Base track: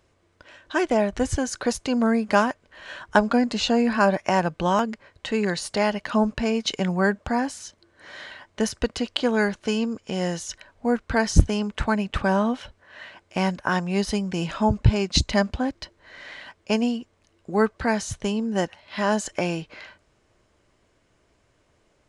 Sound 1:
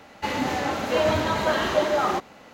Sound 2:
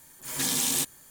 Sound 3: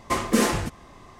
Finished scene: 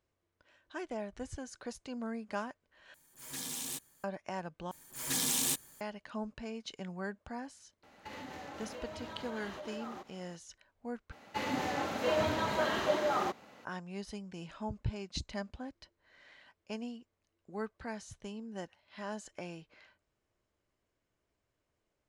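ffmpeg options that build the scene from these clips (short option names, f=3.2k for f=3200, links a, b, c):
-filter_complex "[2:a]asplit=2[a][b];[1:a]asplit=2[c][d];[0:a]volume=-18.5dB[e];[c]acompressor=threshold=-30dB:ratio=6:attack=3.2:release=140:knee=1:detection=peak[f];[d]highpass=84[g];[e]asplit=4[h][i][j][k];[h]atrim=end=2.944[l];[a]atrim=end=1.1,asetpts=PTS-STARTPTS,volume=-13.5dB[m];[i]atrim=start=4.036:end=4.714[n];[b]atrim=end=1.1,asetpts=PTS-STARTPTS,volume=-5dB[o];[j]atrim=start=5.806:end=11.124[p];[g]atrim=end=2.53,asetpts=PTS-STARTPTS,volume=-8.5dB[q];[k]atrim=start=13.646[r];[f]atrim=end=2.53,asetpts=PTS-STARTPTS,volume=-12.5dB,afade=t=in:d=0.004:c=hsin,afade=t=out:st=2.526:d=0.004:c=hsin,adelay=7830[s];[l][m]acrossfade=d=0.004:c1=hsin:c2=hsin[t];[t][n]acrossfade=d=0.004:c1=hsin:c2=hsin[u];[u][o]acrossfade=d=0.004:c1=hsin:c2=hsin[v];[v][p]acrossfade=d=0.004:c1=hsin:c2=hsin[w];[w][q]acrossfade=d=0.004:c1=hsin:c2=hsin[x];[x][r]acrossfade=d=0.004:c1=hsin:c2=hsin[y];[y][s]amix=inputs=2:normalize=0"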